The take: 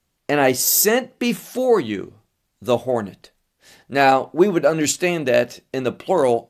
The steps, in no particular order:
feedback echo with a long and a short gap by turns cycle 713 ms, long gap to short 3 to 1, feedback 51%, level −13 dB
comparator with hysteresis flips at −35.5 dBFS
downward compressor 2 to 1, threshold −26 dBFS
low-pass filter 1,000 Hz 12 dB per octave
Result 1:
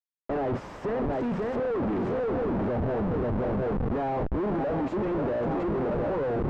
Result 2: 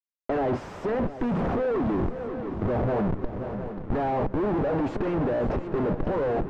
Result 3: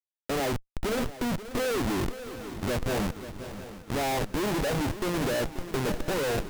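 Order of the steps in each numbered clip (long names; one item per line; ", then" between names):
feedback echo with a long and a short gap by turns, then downward compressor, then comparator with hysteresis, then low-pass filter
comparator with hysteresis, then feedback echo with a long and a short gap by turns, then downward compressor, then low-pass filter
low-pass filter, then downward compressor, then comparator with hysteresis, then feedback echo with a long and a short gap by turns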